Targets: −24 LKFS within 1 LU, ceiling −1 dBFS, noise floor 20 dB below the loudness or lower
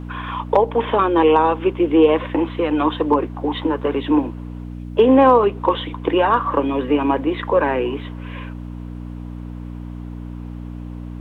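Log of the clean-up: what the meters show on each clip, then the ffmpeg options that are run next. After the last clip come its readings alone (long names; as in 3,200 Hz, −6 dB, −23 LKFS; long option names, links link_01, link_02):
mains hum 60 Hz; hum harmonics up to 300 Hz; level of the hum −28 dBFS; integrated loudness −18.0 LKFS; sample peak −3.0 dBFS; target loudness −24.0 LKFS
→ -af "bandreject=frequency=60:width_type=h:width=4,bandreject=frequency=120:width_type=h:width=4,bandreject=frequency=180:width_type=h:width=4,bandreject=frequency=240:width_type=h:width=4,bandreject=frequency=300:width_type=h:width=4"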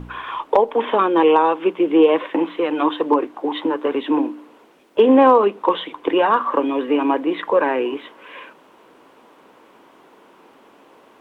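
mains hum none found; integrated loudness −18.0 LKFS; sample peak −3.0 dBFS; target loudness −24.0 LKFS
→ -af "volume=-6dB"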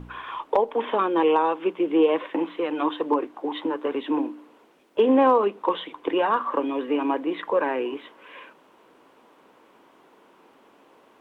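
integrated loudness −24.0 LKFS; sample peak −9.0 dBFS; background noise floor −57 dBFS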